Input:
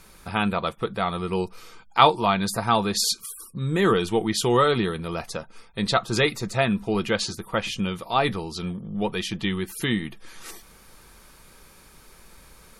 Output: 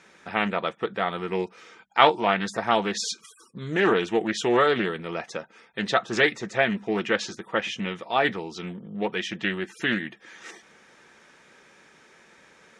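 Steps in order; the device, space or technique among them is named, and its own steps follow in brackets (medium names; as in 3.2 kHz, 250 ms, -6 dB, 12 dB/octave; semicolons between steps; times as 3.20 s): full-range speaker at full volume (loudspeaker Doppler distortion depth 0.27 ms; cabinet simulation 230–6500 Hz, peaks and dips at 1.1 kHz -5 dB, 1.8 kHz +7 dB, 4.5 kHz -10 dB)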